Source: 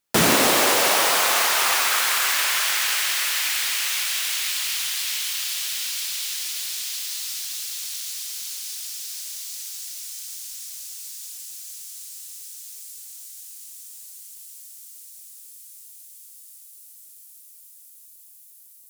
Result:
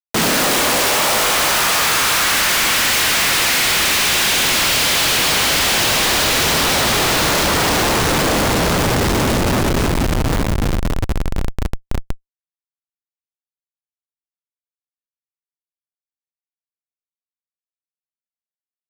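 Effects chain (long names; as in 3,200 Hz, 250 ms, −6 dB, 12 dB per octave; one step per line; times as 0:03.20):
four-comb reverb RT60 2.6 s, combs from 28 ms, DRR −0.5 dB
comparator with hysteresis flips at −24 dBFS
level +7.5 dB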